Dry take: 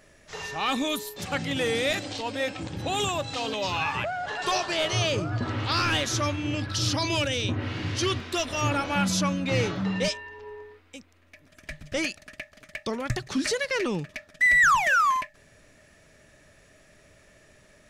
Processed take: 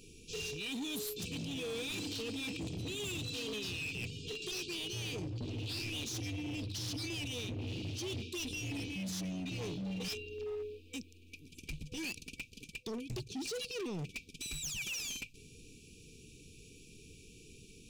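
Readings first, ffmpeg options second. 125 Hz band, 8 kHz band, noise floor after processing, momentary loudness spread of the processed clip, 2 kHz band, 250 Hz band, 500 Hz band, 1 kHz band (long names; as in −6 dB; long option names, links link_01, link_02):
−10.5 dB, −8.5 dB, −58 dBFS, 18 LU, −17.5 dB, −10.0 dB, −13.0 dB, −27.5 dB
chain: -af "bandreject=frequency=54.59:width_type=h:width=4,bandreject=frequency=109.18:width_type=h:width=4,afftfilt=real='re*(1-between(b*sr/4096,500,2300))':imag='im*(1-between(b*sr/4096,500,2300))':win_size=4096:overlap=0.75,areverse,acompressor=threshold=-37dB:ratio=12,areverse,asoftclip=type=hard:threshold=-40dB,volume=3.5dB"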